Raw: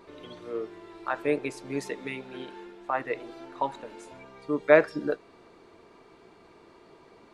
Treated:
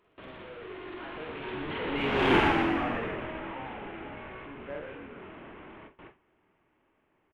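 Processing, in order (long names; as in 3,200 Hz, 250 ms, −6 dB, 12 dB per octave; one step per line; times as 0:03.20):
linear delta modulator 16 kbit/s, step −17.5 dBFS
source passing by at 0:02.33, 20 m/s, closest 2.1 metres
parametric band 83 Hz +3 dB 1.3 octaves
in parallel at −10 dB: hard clipping −32.5 dBFS, distortion −7 dB
on the sum: double-tracking delay 46 ms −3 dB
on a send: echo with shifted repeats 120 ms, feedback 55%, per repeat −48 Hz, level −6 dB
on the sum: noise gate with hold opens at −39 dBFS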